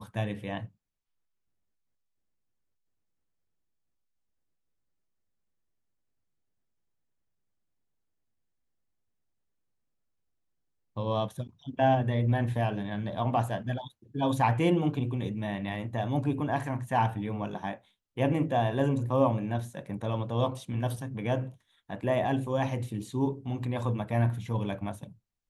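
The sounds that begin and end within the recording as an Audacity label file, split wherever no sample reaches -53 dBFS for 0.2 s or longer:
10.960000	17.780000	sound
18.170000	21.560000	sound
21.890000	25.150000	sound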